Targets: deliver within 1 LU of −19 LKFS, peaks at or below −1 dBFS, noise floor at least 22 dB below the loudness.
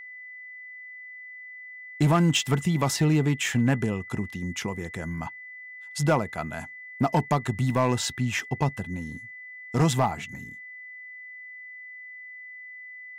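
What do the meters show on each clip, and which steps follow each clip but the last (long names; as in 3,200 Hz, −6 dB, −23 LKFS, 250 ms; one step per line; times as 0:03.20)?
share of clipped samples 0.5%; peaks flattened at −15.0 dBFS; interfering tone 2,000 Hz; level of the tone −40 dBFS; integrated loudness −26.5 LKFS; sample peak −15.0 dBFS; target loudness −19.0 LKFS
→ clipped peaks rebuilt −15 dBFS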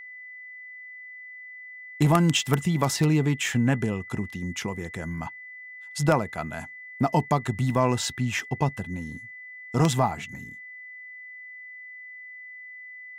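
share of clipped samples 0.0%; interfering tone 2,000 Hz; level of the tone −40 dBFS
→ notch filter 2,000 Hz, Q 30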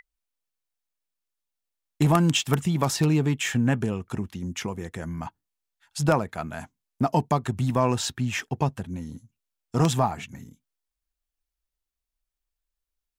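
interfering tone none found; integrated loudness −25.5 LKFS; sample peak −6.0 dBFS; target loudness −19.0 LKFS
→ level +6.5 dB
brickwall limiter −1 dBFS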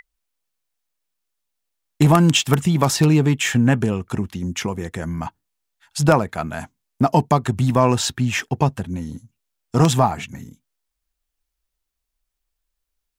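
integrated loudness −19.0 LKFS; sample peak −1.0 dBFS; background noise floor −79 dBFS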